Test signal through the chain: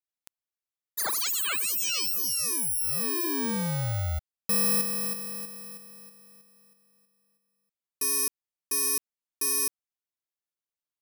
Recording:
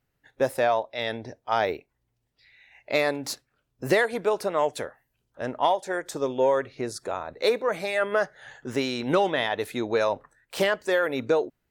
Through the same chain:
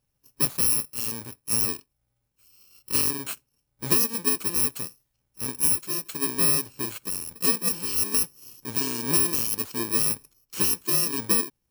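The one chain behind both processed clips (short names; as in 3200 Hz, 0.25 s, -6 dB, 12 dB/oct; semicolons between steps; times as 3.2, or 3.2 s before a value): FFT order left unsorted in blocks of 64 samples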